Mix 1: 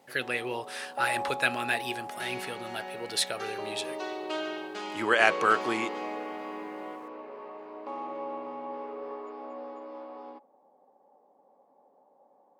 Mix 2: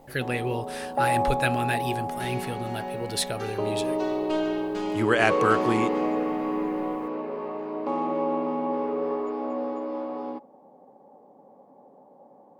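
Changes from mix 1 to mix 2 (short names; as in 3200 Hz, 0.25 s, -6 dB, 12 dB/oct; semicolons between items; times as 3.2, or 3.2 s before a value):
first sound +7.5 dB; master: remove weighting filter A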